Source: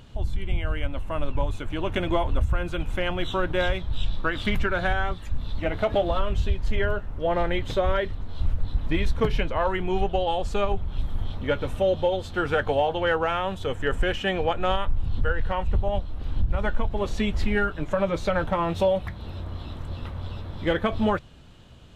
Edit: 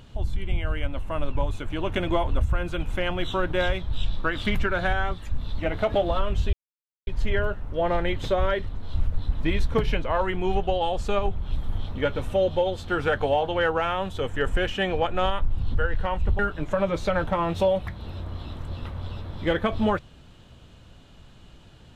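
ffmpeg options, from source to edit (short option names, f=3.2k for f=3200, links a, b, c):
-filter_complex "[0:a]asplit=3[a][b][c];[a]atrim=end=6.53,asetpts=PTS-STARTPTS,afade=t=out:st=6.526:d=0.004:c=hsin,apad=pad_dur=0.54[d];[b]atrim=start=6.53:end=15.852,asetpts=PTS-STARTPTS,afade=t=in:d=0.004:c=hsin[e];[c]atrim=start=17.588[f];[d][e]concat=n=2:v=0:a=1[g];[g][f]acrossfade=d=0.004:c1=hsin:c2=hsin"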